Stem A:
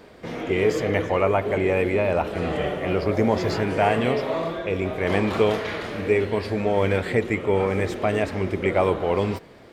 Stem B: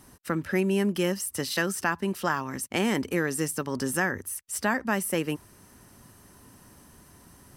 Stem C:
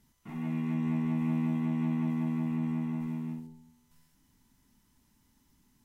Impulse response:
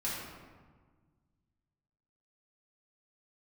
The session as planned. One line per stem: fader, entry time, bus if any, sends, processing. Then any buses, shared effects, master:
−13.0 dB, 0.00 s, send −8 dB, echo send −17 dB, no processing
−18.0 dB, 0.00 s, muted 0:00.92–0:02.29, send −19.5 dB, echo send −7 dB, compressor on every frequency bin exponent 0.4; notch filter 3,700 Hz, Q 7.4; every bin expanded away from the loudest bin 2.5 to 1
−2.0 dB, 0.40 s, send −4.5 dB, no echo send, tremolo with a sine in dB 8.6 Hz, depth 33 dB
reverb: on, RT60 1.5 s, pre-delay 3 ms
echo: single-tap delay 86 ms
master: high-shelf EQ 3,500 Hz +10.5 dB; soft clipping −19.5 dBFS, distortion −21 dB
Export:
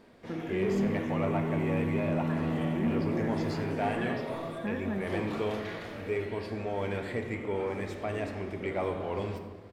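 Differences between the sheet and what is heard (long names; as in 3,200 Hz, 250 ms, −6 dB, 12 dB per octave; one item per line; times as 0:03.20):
stem C: missing tremolo with a sine in dB 8.6 Hz, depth 33 dB
master: missing high-shelf EQ 3,500 Hz +10.5 dB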